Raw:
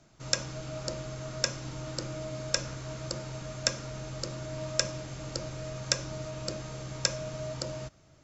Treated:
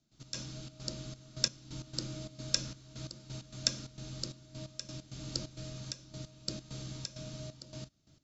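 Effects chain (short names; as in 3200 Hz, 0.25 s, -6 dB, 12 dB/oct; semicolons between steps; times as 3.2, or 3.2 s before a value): ten-band EQ 250 Hz +7 dB, 500 Hz -7 dB, 1000 Hz -6 dB, 2000 Hz -5 dB, 4000 Hz +8 dB; AGC gain up to 4 dB; step gate ".x.xxx.xxx..x." 132 bpm -12 dB; gain -6 dB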